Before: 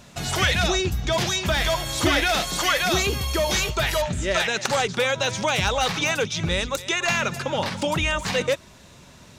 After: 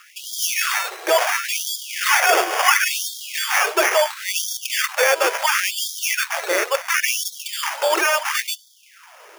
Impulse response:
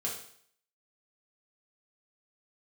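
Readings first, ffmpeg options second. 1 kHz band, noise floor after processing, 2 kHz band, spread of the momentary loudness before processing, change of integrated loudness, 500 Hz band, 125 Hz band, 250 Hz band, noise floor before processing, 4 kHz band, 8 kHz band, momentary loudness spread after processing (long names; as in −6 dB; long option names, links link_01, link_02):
+4.5 dB, −50 dBFS, +4.5 dB, 5 LU, +3.5 dB, +1.5 dB, below −40 dB, −9.5 dB, −48 dBFS, +0.5 dB, +6.0 dB, 8 LU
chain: -filter_complex "[0:a]acrusher=samples=11:mix=1:aa=0.000001,asplit=2[link_01][link_02];[1:a]atrim=start_sample=2205[link_03];[link_02][link_03]afir=irnorm=-1:irlink=0,volume=-23dB[link_04];[link_01][link_04]amix=inputs=2:normalize=0,afftfilt=real='re*gte(b*sr/1024,320*pow(3200/320,0.5+0.5*sin(2*PI*0.72*pts/sr)))':imag='im*gte(b*sr/1024,320*pow(3200/320,0.5+0.5*sin(2*PI*0.72*pts/sr)))':win_size=1024:overlap=0.75,volume=6.5dB"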